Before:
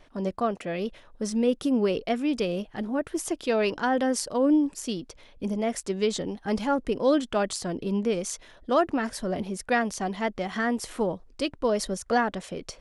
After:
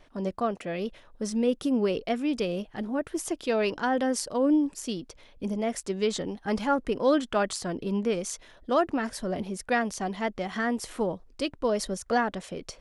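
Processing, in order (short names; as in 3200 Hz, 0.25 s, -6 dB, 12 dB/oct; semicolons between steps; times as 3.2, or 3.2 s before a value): 6.05–8.16 dynamic EQ 1400 Hz, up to +4 dB, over -40 dBFS, Q 0.92; gain -1.5 dB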